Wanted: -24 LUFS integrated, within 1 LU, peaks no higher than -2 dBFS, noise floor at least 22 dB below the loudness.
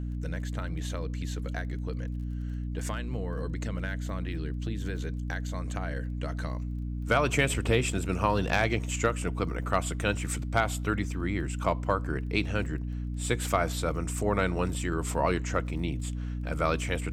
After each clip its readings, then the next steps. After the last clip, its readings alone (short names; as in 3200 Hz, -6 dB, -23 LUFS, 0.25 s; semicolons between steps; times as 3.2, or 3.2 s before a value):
ticks 19/s; hum 60 Hz; harmonics up to 300 Hz; hum level -31 dBFS; loudness -30.5 LUFS; peak -10.0 dBFS; loudness target -24.0 LUFS
-> de-click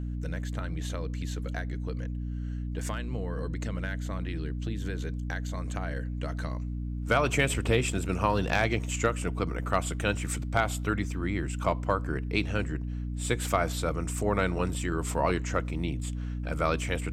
ticks 0/s; hum 60 Hz; harmonics up to 300 Hz; hum level -31 dBFS
-> de-hum 60 Hz, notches 5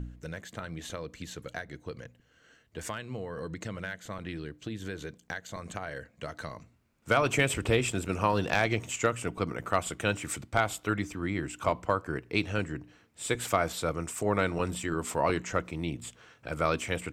hum none; loudness -32.0 LUFS; peak -11.0 dBFS; loudness target -24.0 LUFS
-> gain +8 dB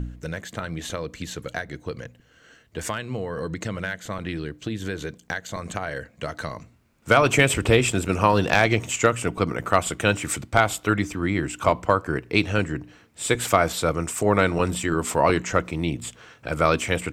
loudness -24.0 LUFS; peak -3.0 dBFS; noise floor -57 dBFS